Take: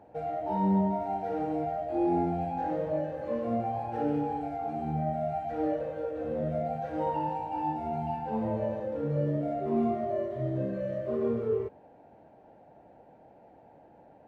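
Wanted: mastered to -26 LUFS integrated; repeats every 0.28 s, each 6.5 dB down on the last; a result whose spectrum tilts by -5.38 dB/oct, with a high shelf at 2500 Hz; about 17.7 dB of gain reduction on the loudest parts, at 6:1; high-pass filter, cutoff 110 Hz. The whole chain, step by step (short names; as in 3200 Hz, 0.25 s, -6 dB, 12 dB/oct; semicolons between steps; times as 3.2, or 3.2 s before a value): HPF 110 Hz; high shelf 2500 Hz +5.5 dB; compressor 6:1, threshold -43 dBFS; feedback echo 0.28 s, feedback 47%, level -6.5 dB; gain +19 dB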